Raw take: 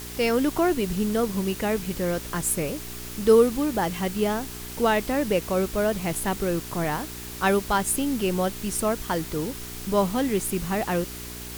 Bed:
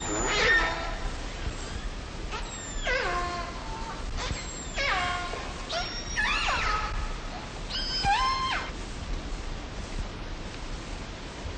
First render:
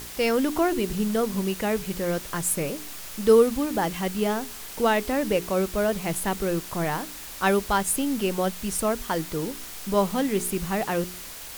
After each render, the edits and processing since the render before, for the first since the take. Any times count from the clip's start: de-hum 60 Hz, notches 7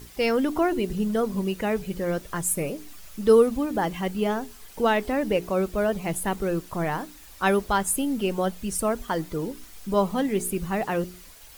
denoiser 11 dB, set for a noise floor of -39 dBFS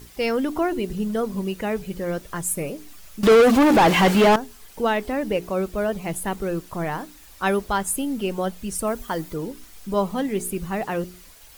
3.23–4.36 overdrive pedal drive 34 dB, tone 2500 Hz, clips at -7 dBFS; 8.87–9.34 high shelf 9700 Hz +6.5 dB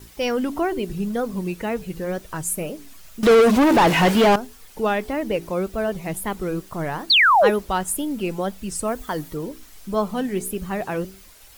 7.1–7.5 painted sound fall 350–4500 Hz -14 dBFS; wow and flutter 120 cents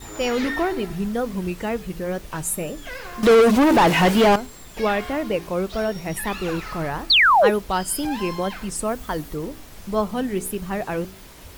add bed -7.5 dB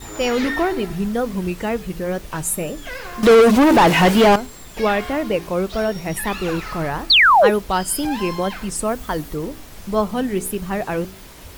gain +3 dB; limiter -3 dBFS, peak gain reduction 1 dB

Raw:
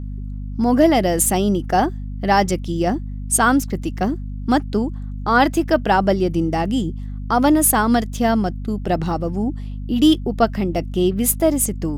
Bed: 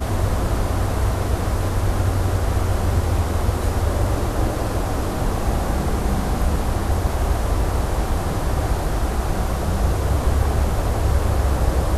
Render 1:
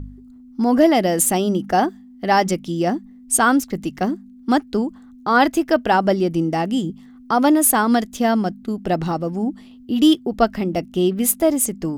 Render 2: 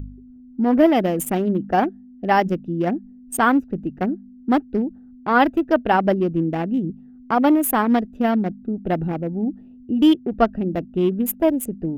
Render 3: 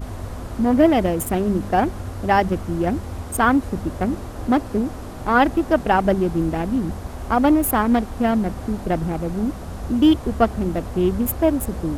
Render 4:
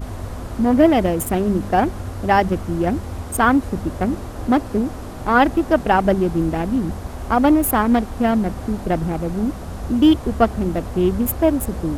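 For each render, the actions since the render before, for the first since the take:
de-hum 50 Hz, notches 4
Wiener smoothing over 41 samples; band shelf 6500 Hz -10.5 dB
add bed -11 dB
gain +1.5 dB

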